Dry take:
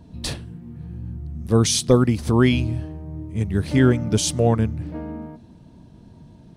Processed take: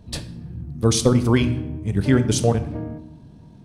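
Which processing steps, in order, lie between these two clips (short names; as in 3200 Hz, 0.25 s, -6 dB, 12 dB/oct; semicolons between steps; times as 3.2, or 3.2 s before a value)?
tempo 1.8×; shoebox room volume 260 m³, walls mixed, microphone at 0.38 m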